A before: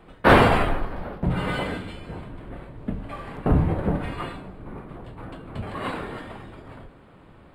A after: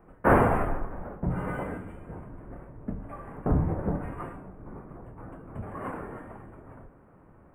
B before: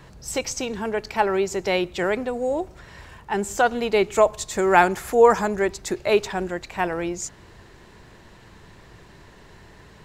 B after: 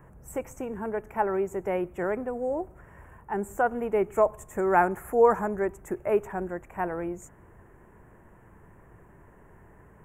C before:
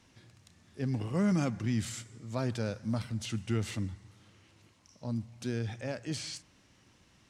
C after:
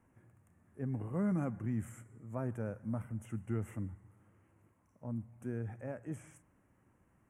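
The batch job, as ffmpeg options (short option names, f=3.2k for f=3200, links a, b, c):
-af "asuperstop=centerf=4300:order=4:qfactor=0.5,volume=-5dB"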